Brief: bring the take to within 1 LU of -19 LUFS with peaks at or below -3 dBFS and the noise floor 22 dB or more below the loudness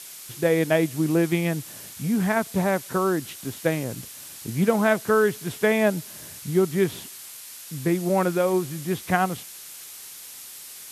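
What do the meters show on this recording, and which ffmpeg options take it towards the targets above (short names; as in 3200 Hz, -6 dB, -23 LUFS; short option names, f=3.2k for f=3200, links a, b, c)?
noise floor -42 dBFS; noise floor target -46 dBFS; loudness -24.0 LUFS; peak -6.0 dBFS; loudness target -19.0 LUFS
-> -af "afftdn=nr=6:nf=-42"
-af "volume=5dB,alimiter=limit=-3dB:level=0:latency=1"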